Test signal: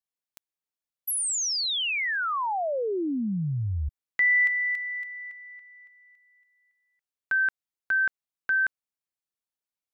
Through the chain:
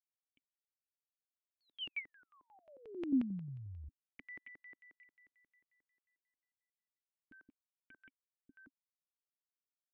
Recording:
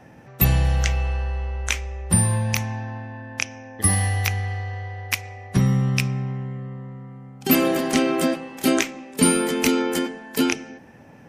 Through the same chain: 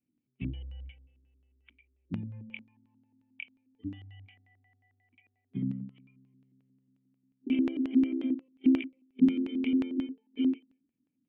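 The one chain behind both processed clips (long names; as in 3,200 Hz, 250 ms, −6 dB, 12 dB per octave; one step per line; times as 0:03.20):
noise reduction from a noise print of the clip's start 22 dB
formant resonators in series i
auto-filter low-pass square 5.6 Hz 300–2,700 Hz
level −7.5 dB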